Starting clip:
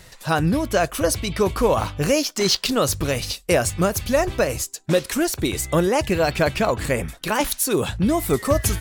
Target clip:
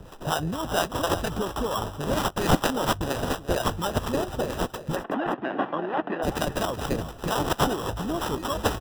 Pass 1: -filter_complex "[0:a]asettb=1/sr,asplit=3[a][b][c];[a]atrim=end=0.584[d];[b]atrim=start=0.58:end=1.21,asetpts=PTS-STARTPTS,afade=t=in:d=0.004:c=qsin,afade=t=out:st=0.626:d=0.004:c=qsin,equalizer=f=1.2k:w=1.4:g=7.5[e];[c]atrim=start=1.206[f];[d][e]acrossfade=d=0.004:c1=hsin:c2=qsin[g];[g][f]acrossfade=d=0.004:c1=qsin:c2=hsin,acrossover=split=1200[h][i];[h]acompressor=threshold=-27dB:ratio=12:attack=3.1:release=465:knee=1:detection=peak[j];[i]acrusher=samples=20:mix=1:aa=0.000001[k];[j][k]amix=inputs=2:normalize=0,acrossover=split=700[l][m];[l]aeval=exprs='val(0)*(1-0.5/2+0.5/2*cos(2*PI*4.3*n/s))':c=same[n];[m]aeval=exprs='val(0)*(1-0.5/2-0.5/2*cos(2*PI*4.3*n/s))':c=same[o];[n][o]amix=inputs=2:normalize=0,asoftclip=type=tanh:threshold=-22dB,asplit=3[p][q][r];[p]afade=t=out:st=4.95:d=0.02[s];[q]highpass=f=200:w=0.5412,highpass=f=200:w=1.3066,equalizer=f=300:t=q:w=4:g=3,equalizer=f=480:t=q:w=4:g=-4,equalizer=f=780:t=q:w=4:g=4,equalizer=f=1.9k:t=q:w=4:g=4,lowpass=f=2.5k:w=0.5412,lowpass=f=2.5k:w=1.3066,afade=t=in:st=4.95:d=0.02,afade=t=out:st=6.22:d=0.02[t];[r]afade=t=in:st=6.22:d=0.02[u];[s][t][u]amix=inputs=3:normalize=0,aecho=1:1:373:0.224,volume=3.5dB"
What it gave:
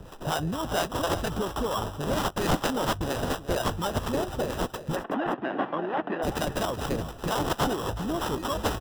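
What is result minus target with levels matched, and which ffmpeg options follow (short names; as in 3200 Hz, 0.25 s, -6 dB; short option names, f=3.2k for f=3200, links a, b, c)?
soft clip: distortion +13 dB
-filter_complex "[0:a]asettb=1/sr,asplit=3[a][b][c];[a]atrim=end=0.584[d];[b]atrim=start=0.58:end=1.21,asetpts=PTS-STARTPTS,afade=t=in:d=0.004:c=qsin,afade=t=out:st=0.626:d=0.004:c=qsin,equalizer=f=1.2k:w=1.4:g=7.5[e];[c]atrim=start=1.206[f];[d][e]acrossfade=d=0.004:c1=hsin:c2=qsin[g];[g][f]acrossfade=d=0.004:c1=qsin:c2=hsin,acrossover=split=1200[h][i];[h]acompressor=threshold=-27dB:ratio=12:attack=3.1:release=465:knee=1:detection=peak[j];[i]acrusher=samples=20:mix=1:aa=0.000001[k];[j][k]amix=inputs=2:normalize=0,acrossover=split=700[l][m];[l]aeval=exprs='val(0)*(1-0.5/2+0.5/2*cos(2*PI*4.3*n/s))':c=same[n];[m]aeval=exprs='val(0)*(1-0.5/2-0.5/2*cos(2*PI*4.3*n/s))':c=same[o];[n][o]amix=inputs=2:normalize=0,asoftclip=type=tanh:threshold=-11.5dB,asplit=3[p][q][r];[p]afade=t=out:st=4.95:d=0.02[s];[q]highpass=f=200:w=0.5412,highpass=f=200:w=1.3066,equalizer=f=300:t=q:w=4:g=3,equalizer=f=480:t=q:w=4:g=-4,equalizer=f=780:t=q:w=4:g=4,equalizer=f=1.9k:t=q:w=4:g=4,lowpass=f=2.5k:w=0.5412,lowpass=f=2.5k:w=1.3066,afade=t=in:st=4.95:d=0.02,afade=t=out:st=6.22:d=0.02[t];[r]afade=t=in:st=6.22:d=0.02[u];[s][t][u]amix=inputs=3:normalize=0,aecho=1:1:373:0.224,volume=3.5dB"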